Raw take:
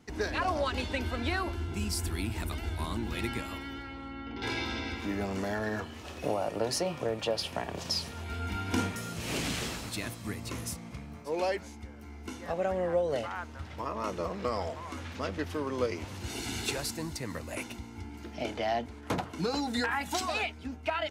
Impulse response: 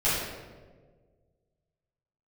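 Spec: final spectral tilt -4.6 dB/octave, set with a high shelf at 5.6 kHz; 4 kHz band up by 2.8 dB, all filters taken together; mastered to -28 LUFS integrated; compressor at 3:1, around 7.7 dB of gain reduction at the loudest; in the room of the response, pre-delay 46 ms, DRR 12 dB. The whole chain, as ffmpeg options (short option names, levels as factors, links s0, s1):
-filter_complex "[0:a]equalizer=f=4000:t=o:g=7,highshelf=f=5600:g=-8.5,acompressor=threshold=0.0178:ratio=3,asplit=2[s0][s1];[1:a]atrim=start_sample=2205,adelay=46[s2];[s1][s2]afir=irnorm=-1:irlink=0,volume=0.0562[s3];[s0][s3]amix=inputs=2:normalize=0,volume=3.16"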